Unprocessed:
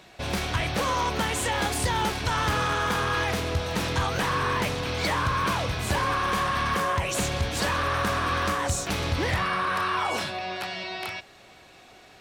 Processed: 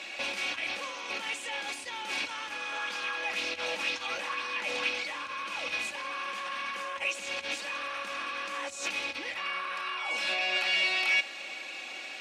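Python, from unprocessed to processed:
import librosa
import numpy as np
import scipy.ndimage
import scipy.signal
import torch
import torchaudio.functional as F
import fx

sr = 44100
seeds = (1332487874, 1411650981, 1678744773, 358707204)

y = fx.high_shelf(x, sr, hz=3500.0, db=7.5)
y = fx.over_compress(y, sr, threshold_db=-34.0, ratio=-1.0)
y = np.clip(10.0 ** (26.0 / 20.0) * y, -1.0, 1.0) / 10.0 ** (26.0 / 20.0)
y = fx.bandpass_edges(y, sr, low_hz=340.0, high_hz=7500.0)
y = fx.peak_eq(y, sr, hz=2500.0, db=11.5, octaves=0.49)
y = y + 0.56 * np.pad(y, (int(3.6 * sr / 1000.0), 0))[:len(y)]
y = fx.bell_lfo(y, sr, hz=2.0, low_hz=560.0, high_hz=5400.0, db=7, at=(2.72, 4.89))
y = F.gain(torch.from_numpy(y), -4.5).numpy()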